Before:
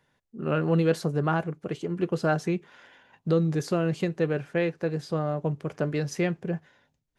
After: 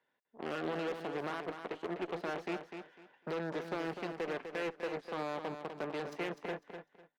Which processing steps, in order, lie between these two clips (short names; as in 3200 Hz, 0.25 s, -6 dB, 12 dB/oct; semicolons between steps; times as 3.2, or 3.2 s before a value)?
in parallel at -10.5 dB: soft clip -23 dBFS, distortion -11 dB; on the sum: limiter -20.5 dBFS, peak gain reduction 10 dB; added harmonics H 3 -12 dB, 5 -33 dB, 7 -19 dB, 8 -26 dB, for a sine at -20.5 dBFS; three-band isolator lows -23 dB, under 240 Hz, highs -16 dB, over 4000 Hz; one-sided clip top -28.5 dBFS, bottom -25 dBFS; on a send: feedback echo 0.25 s, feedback 23%, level -8 dB; on the sum: gain -4 dB